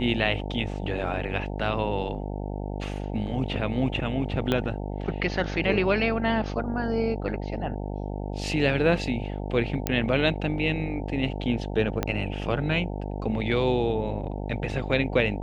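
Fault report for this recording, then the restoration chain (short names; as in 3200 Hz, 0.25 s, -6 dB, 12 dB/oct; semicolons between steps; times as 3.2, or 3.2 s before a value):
buzz 50 Hz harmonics 18 -32 dBFS
4.52 pop -12 dBFS
9.87 pop -9 dBFS
12.03 pop -10 dBFS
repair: de-click; de-hum 50 Hz, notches 18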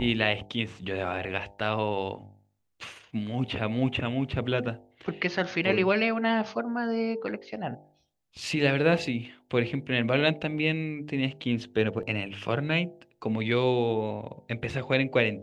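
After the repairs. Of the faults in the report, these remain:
4.52 pop
12.03 pop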